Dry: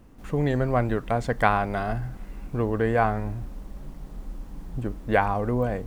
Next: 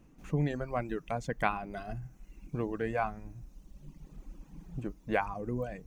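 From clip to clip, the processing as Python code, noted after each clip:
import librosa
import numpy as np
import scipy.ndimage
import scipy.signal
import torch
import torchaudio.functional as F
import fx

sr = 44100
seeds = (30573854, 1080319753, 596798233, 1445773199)

y = fx.graphic_eq_31(x, sr, hz=(100, 160, 315, 2500, 6300), db=(-4, 11, 5, 7, 8))
y = fx.dereverb_blind(y, sr, rt60_s=1.5)
y = y * librosa.db_to_amplitude(-9.0)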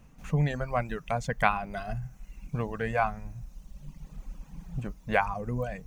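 y = fx.peak_eq(x, sr, hz=330.0, db=-15.0, octaves=0.64)
y = y * librosa.db_to_amplitude(6.5)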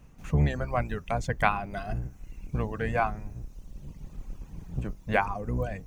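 y = fx.octave_divider(x, sr, octaves=1, level_db=-1.0)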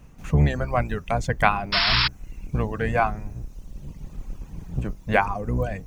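y = fx.spec_paint(x, sr, seeds[0], shape='noise', start_s=1.72, length_s=0.36, low_hz=860.0, high_hz=5500.0, level_db=-26.0)
y = y * librosa.db_to_amplitude(5.0)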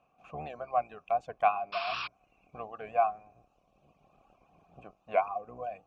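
y = fx.vowel_filter(x, sr, vowel='a')
y = fx.record_warp(y, sr, rpm=78.0, depth_cents=100.0)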